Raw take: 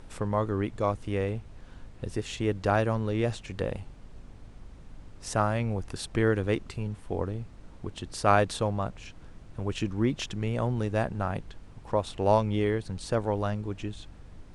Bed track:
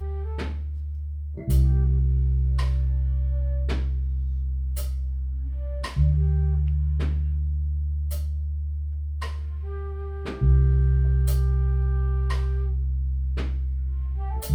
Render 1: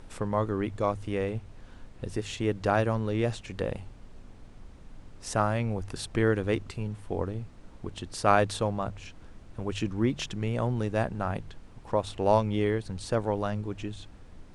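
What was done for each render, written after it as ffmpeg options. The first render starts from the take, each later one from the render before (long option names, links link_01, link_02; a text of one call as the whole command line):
ffmpeg -i in.wav -af "bandreject=frequency=50:width_type=h:width=4,bandreject=frequency=100:width_type=h:width=4,bandreject=frequency=150:width_type=h:width=4" out.wav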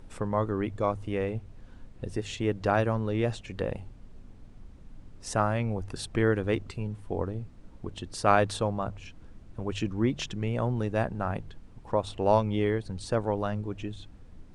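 ffmpeg -i in.wav -af "afftdn=noise_reduction=6:noise_floor=-50" out.wav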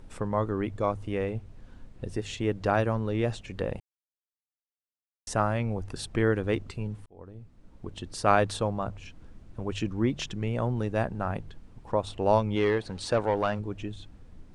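ffmpeg -i in.wav -filter_complex "[0:a]asplit=3[link_01][link_02][link_03];[link_01]afade=type=out:start_time=12.55:duration=0.02[link_04];[link_02]asplit=2[link_05][link_06];[link_06]highpass=frequency=720:poles=1,volume=15dB,asoftclip=type=tanh:threshold=-14.5dB[link_07];[link_05][link_07]amix=inputs=2:normalize=0,lowpass=frequency=3500:poles=1,volume=-6dB,afade=type=in:start_time=12.55:duration=0.02,afade=type=out:start_time=13.58:duration=0.02[link_08];[link_03]afade=type=in:start_time=13.58:duration=0.02[link_09];[link_04][link_08][link_09]amix=inputs=3:normalize=0,asplit=4[link_10][link_11][link_12][link_13];[link_10]atrim=end=3.8,asetpts=PTS-STARTPTS,afade=type=out:start_time=3.796:duration=0.004:curve=hsin[link_14];[link_11]atrim=start=3.8:end=5.27,asetpts=PTS-STARTPTS,volume=0[link_15];[link_12]atrim=start=5.27:end=7.06,asetpts=PTS-STARTPTS,afade=type=in:duration=0.004:curve=hsin,afade=type=out:start_time=1.786:duration=0.004:curve=hsin[link_16];[link_13]atrim=start=7.06,asetpts=PTS-STARTPTS,afade=type=in:duration=0.98[link_17];[link_14][link_15][link_16][link_17]concat=n=4:v=0:a=1" out.wav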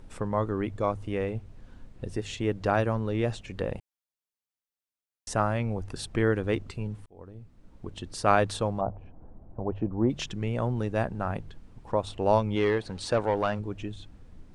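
ffmpeg -i in.wav -filter_complex "[0:a]asplit=3[link_01][link_02][link_03];[link_01]afade=type=out:start_time=8.8:duration=0.02[link_04];[link_02]lowpass=frequency=770:width_type=q:width=2.5,afade=type=in:start_time=8.8:duration=0.02,afade=type=out:start_time=10.09:duration=0.02[link_05];[link_03]afade=type=in:start_time=10.09:duration=0.02[link_06];[link_04][link_05][link_06]amix=inputs=3:normalize=0" out.wav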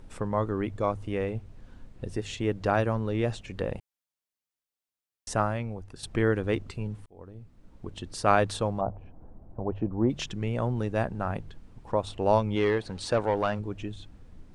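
ffmpeg -i in.wav -filter_complex "[0:a]asplit=2[link_01][link_02];[link_01]atrim=end=6.03,asetpts=PTS-STARTPTS,afade=type=out:start_time=5.4:duration=0.63:curve=qua:silence=0.375837[link_03];[link_02]atrim=start=6.03,asetpts=PTS-STARTPTS,afade=type=in:duration=0.004:curve=hsin:silence=0.375837[link_04];[link_03][link_04]concat=n=2:v=0:a=1" out.wav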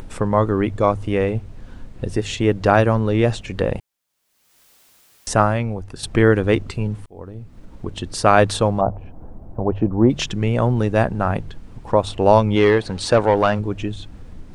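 ffmpeg -i in.wav -af "acompressor=mode=upward:threshold=-42dB:ratio=2.5,alimiter=level_in=10.5dB:limit=-1dB:release=50:level=0:latency=1" out.wav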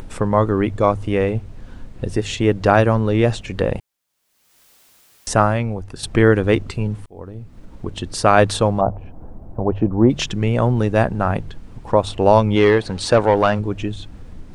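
ffmpeg -i in.wav -af "volume=1dB,alimiter=limit=-1dB:level=0:latency=1" out.wav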